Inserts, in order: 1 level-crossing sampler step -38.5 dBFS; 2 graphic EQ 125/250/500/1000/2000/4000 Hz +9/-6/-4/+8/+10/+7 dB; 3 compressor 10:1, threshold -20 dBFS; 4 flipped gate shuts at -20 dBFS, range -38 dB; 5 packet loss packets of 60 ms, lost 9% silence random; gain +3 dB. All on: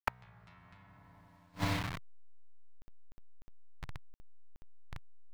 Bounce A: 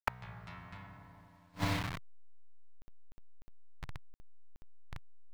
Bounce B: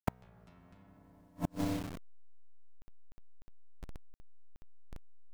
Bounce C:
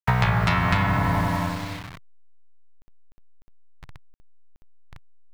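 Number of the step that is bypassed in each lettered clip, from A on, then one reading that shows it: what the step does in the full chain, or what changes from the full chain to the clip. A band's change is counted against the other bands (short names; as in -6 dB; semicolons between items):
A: 3, mean gain reduction 4.5 dB; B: 2, momentary loudness spread change -2 LU; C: 4, momentary loudness spread change -10 LU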